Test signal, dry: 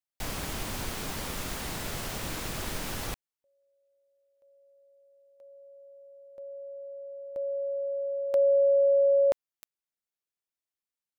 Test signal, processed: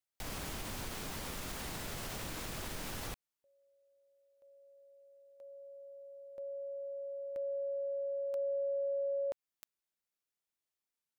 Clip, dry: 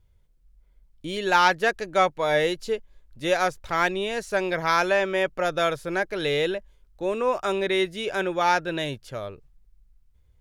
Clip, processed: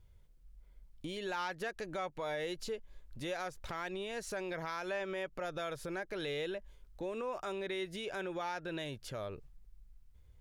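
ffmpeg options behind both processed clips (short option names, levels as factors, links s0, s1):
-af "acompressor=threshold=0.0158:ratio=4:attack=0.41:release=182:knee=6:detection=peak"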